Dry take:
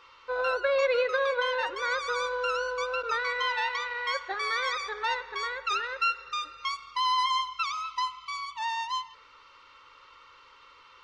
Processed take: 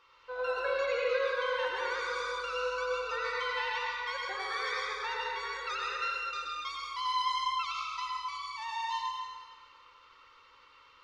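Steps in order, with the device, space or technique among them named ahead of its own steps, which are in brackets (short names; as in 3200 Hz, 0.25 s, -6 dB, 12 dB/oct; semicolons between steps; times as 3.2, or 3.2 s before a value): stairwell (reverb RT60 1.7 s, pre-delay 81 ms, DRR -3.5 dB); gain -9 dB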